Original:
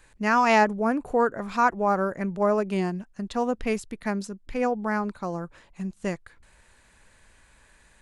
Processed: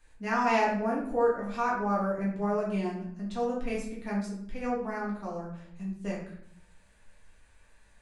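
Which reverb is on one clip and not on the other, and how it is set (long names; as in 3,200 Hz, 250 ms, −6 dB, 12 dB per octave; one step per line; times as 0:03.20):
rectangular room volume 110 cubic metres, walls mixed, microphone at 1.7 metres
level −13 dB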